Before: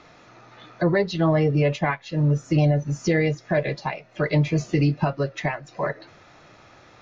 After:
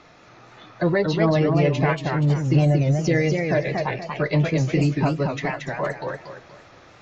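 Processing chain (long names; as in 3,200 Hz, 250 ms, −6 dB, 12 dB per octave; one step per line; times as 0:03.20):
feedback echo with a swinging delay time 235 ms, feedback 34%, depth 192 cents, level −4 dB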